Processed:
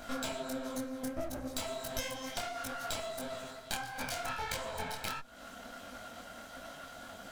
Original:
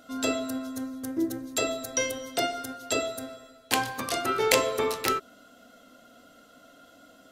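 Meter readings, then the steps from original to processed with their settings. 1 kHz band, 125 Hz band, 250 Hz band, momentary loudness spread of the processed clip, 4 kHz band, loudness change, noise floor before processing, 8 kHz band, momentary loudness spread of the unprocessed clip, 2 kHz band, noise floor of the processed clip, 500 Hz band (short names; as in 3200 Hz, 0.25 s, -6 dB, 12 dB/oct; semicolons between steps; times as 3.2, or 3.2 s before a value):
-8.5 dB, -3.5 dB, -9.5 dB, 10 LU, -8.5 dB, -11.0 dB, -56 dBFS, -10.5 dB, 12 LU, -8.5 dB, -51 dBFS, -11.0 dB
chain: minimum comb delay 1.3 ms; bell 13000 Hz -2.5 dB 0.42 oct; compressor 10:1, threshold -43 dBFS, peak gain reduction 24.5 dB; detuned doubles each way 52 cents; gain +11.5 dB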